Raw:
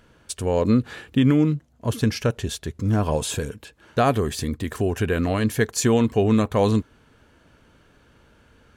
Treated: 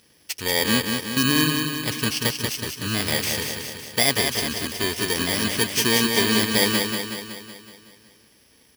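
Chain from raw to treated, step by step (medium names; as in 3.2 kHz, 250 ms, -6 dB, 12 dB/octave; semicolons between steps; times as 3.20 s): bit-reversed sample order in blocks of 32 samples; frequency weighting D; on a send: feedback delay 186 ms, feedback 58%, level -5 dB; on the sum: trim -3 dB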